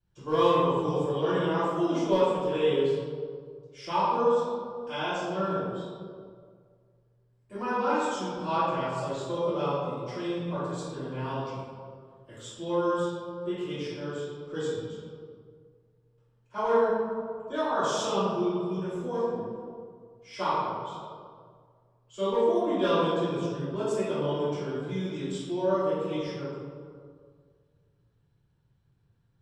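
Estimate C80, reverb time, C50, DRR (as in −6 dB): −0.5 dB, 2.0 s, −3.5 dB, −16.0 dB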